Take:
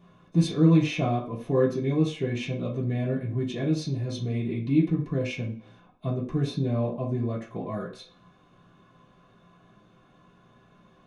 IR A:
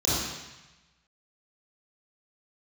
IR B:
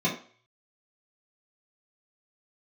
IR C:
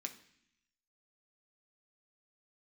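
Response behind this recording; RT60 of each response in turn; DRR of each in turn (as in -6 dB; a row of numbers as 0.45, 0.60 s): B; 1.0, 0.45, 0.65 s; -10.5, -8.0, 3.5 dB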